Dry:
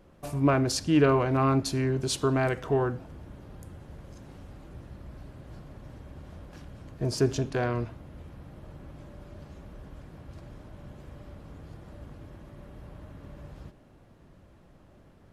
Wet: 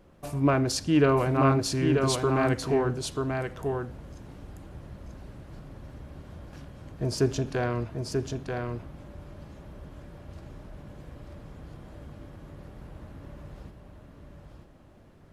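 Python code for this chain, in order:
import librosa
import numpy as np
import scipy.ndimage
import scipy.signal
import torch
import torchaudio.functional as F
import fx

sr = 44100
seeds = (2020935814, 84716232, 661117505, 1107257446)

y = x + 10.0 ** (-4.5 / 20.0) * np.pad(x, (int(937 * sr / 1000.0), 0))[:len(x)]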